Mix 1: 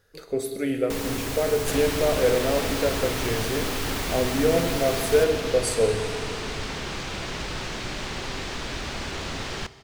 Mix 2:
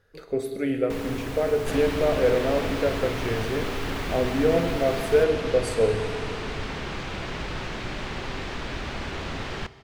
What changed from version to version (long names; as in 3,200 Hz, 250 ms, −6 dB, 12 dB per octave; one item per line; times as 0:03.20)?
first sound: send off
master: add bass and treble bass +1 dB, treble −10 dB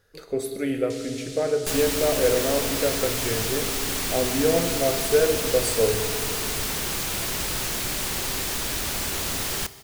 first sound: add flat-topped band-pass 5,600 Hz, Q 1
second sound: remove high-frequency loss of the air 140 metres
master: add bass and treble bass −1 dB, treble +10 dB